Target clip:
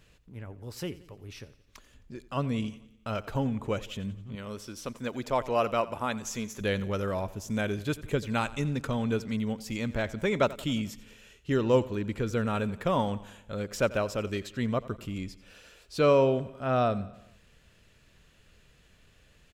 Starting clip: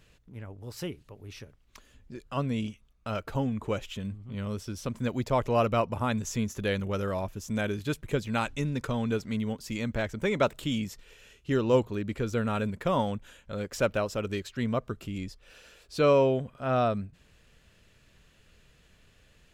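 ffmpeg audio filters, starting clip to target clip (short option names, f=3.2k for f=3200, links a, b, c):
-filter_complex "[0:a]asettb=1/sr,asplit=3[a][b][c];[a]atrim=end=4.354[d];[b]atrim=start=4.35:end=6.61,asetpts=PTS-STARTPTS,afade=t=in:d=0.004:c=qsin,afade=t=out:st=2.256:d=0.004:c=qsin,equalizer=f=79:w=0.45:g=-12[e];[c]atrim=start=6.606[f];[d][e]acrossfade=d=0.004:c1=hsin:c2=qsin[g];[g][f]acrossfade=d=0.004:c1=qsin:c2=hsin,aecho=1:1:88|176|264|352|440:0.119|0.0654|0.036|0.0198|0.0109"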